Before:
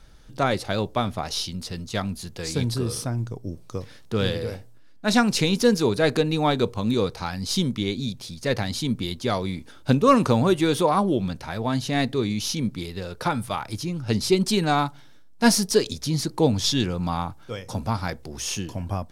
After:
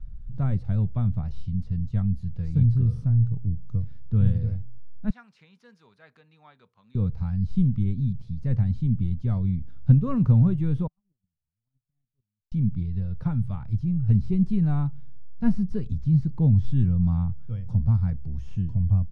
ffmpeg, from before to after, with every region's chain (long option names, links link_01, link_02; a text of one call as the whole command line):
ffmpeg -i in.wav -filter_complex "[0:a]asettb=1/sr,asplit=3[link_01][link_02][link_03];[link_01]atrim=end=5.104[link_04];[link_02]atrim=start=5.1:end=6.95,asetpts=PTS-STARTPTS,afade=type=in:duration=0.004:curve=qsin,afade=type=out:start_time=1.846:duration=0.004:curve=qsin,highpass=1500,highshelf=frequency=2400:gain=-11.5[link_05];[link_03]atrim=start=6.946[link_06];[link_04][link_05]acrossfade=duration=0.004:curve1=hsin:curve2=qsin[link_07];[link_07][link_06]acrossfade=duration=0.004:curve1=qsin:curve2=hsin,asettb=1/sr,asplit=3[link_08][link_09][link_10];[link_08]atrim=end=10.874[link_11];[link_09]atrim=start=10.87:end=12.52,asetpts=PTS-STARTPTS,afade=type=in:duration=0.004:curve=qsin,afade=type=out:start_time=1.646:duration=0.004:curve=qsin,acompressor=threshold=-31dB:ratio=5:attack=3.2:release=140:knee=1:detection=peak,agate=range=-56dB:threshold=-28dB:ratio=16:release=100:detection=peak[link_12];[link_10]atrim=start=12.516[link_13];[link_11][link_12]acrossfade=duration=0.004:curve1=hsin:curve2=qsin[link_14];[link_14][link_13]acrossfade=duration=0.004:curve1=qsin:curve2=hsin,aemphasis=mode=reproduction:type=riaa,acrossover=split=2700[link_15][link_16];[link_16]acompressor=threshold=-47dB:ratio=4:attack=1:release=60[link_17];[link_15][link_17]amix=inputs=2:normalize=0,firequalizer=gain_entry='entry(170,0);entry(320,-17);entry(1200,-14)':delay=0.05:min_phase=1,volume=-4dB" out.wav